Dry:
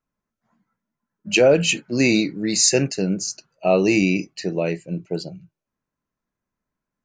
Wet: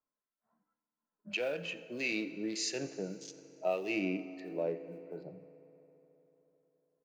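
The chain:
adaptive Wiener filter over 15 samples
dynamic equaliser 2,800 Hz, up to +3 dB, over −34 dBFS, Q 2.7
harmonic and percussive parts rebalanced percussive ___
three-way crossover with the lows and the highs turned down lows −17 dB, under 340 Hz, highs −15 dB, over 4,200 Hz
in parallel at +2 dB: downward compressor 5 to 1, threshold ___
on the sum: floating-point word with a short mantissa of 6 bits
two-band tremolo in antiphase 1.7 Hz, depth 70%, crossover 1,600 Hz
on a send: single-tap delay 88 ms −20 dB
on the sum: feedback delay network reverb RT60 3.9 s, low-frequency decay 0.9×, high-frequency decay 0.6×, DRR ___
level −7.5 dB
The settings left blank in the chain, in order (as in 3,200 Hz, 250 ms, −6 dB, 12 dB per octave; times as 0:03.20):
−10 dB, −37 dBFS, 12.5 dB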